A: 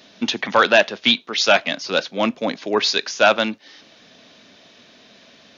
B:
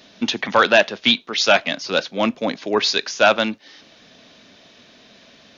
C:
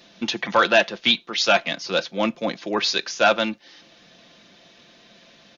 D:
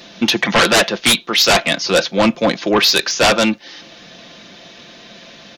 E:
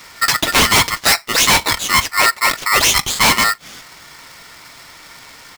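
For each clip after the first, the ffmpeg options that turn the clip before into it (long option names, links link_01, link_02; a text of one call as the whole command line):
ffmpeg -i in.wav -af "lowshelf=frequency=73:gain=8.5" out.wav
ffmpeg -i in.wav -af "aecho=1:1:5.8:0.46,volume=-3.5dB" out.wav
ffmpeg -i in.wav -af "aeval=exprs='0.668*sin(PI/2*3.98*val(0)/0.668)':channel_layout=same,volume=-4dB" out.wav
ffmpeg -i in.wav -af "aeval=exprs='val(0)*sgn(sin(2*PI*1600*n/s))':channel_layout=same" out.wav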